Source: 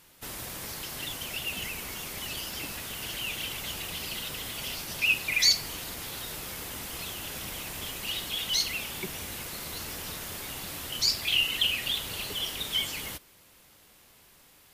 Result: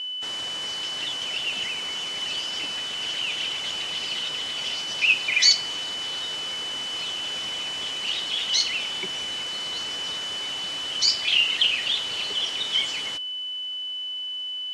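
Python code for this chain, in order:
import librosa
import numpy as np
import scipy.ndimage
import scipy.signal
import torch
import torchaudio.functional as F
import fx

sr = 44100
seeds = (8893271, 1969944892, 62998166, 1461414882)

y = fx.highpass(x, sr, hz=480.0, slope=6)
y = y + 10.0 ** (-34.0 / 20.0) * np.sin(2.0 * np.pi * 3000.0 * np.arange(len(y)) / sr)
y = scipy.signal.sosfilt(scipy.signal.butter(4, 7000.0, 'lowpass', fs=sr, output='sos'), y)
y = y * librosa.db_to_amplitude(5.0)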